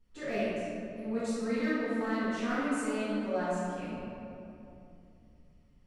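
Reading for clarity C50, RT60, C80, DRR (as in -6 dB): -5.0 dB, 2.9 s, -2.0 dB, -16.5 dB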